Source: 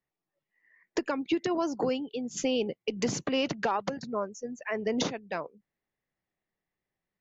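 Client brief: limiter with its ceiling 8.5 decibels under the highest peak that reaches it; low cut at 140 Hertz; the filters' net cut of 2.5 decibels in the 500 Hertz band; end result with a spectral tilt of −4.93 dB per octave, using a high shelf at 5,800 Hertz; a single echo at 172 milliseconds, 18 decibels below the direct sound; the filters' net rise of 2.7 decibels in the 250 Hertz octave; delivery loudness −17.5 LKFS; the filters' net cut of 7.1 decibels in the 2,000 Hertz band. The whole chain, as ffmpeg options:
ffmpeg -i in.wav -af "highpass=140,equalizer=frequency=250:width_type=o:gain=5,equalizer=frequency=500:width_type=o:gain=-4,equalizer=frequency=2000:width_type=o:gain=-8.5,highshelf=frequency=5800:gain=-6.5,alimiter=level_in=1dB:limit=-24dB:level=0:latency=1,volume=-1dB,aecho=1:1:172:0.126,volume=17dB" out.wav

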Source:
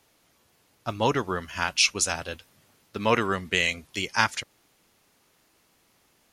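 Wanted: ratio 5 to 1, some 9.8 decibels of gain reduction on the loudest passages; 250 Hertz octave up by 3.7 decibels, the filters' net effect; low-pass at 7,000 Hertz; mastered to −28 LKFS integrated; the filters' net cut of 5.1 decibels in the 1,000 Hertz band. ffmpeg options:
ffmpeg -i in.wav -af "lowpass=7000,equalizer=frequency=250:width_type=o:gain=5,equalizer=frequency=1000:width_type=o:gain=-6.5,acompressor=threshold=-28dB:ratio=5,volume=5.5dB" out.wav

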